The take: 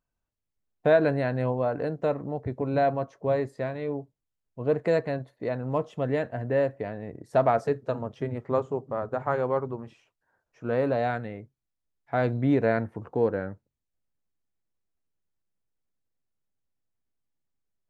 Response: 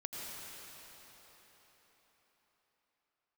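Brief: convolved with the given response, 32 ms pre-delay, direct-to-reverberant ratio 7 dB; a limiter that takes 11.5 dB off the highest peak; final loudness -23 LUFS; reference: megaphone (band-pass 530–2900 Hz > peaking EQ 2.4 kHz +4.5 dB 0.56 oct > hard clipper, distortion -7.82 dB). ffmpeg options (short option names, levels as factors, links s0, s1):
-filter_complex "[0:a]alimiter=limit=0.0891:level=0:latency=1,asplit=2[s0][s1];[1:a]atrim=start_sample=2205,adelay=32[s2];[s1][s2]afir=irnorm=-1:irlink=0,volume=0.398[s3];[s0][s3]amix=inputs=2:normalize=0,highpass=530,lowpass=2900,equalizer=f=2400:t=o:w=0.56:g=4.5,asoftclip=type=hard:threshold=0.02,volume=6.68"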